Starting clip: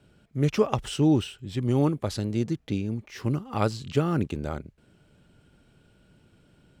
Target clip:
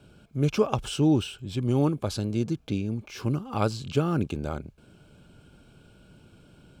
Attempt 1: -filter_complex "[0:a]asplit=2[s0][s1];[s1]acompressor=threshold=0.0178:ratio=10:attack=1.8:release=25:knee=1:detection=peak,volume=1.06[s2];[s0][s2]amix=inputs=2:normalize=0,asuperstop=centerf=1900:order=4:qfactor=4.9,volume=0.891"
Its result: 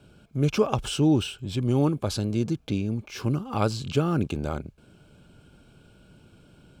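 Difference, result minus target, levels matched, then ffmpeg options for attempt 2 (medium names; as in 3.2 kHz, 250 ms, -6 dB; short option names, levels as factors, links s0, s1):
compression: peak gain reduction -10 dB
-filter_complex "[0:a]asplit=2[s0][s1];[s1]acompressor=threshold=0.00501:ratio=10:attack=1.8:release=25:knee=1:detection=peak,volume=1.06[s2];[s0][s2]amix=inputs=2:normalize=0,asuperstop=centerf=1900:order=4:qfactor=4.9,volume=0.891"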